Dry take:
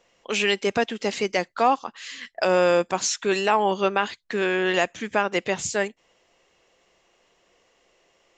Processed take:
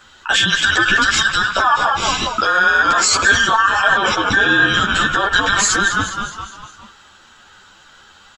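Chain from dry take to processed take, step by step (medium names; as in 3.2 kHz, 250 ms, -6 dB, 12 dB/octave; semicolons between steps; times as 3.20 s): every band turned upside down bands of 2 kHz; vibrato 15 Hz 16 cents; frequency-shifting echo 206 ms, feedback 53%, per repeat -80 Hz, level -13 dB; on a send at -23.5 dB: reverberation RT60 2.1 s, pre-delay 38 ms; on the sum: loudness maximiser +21 dB; three-phase chorus; trim -1 dB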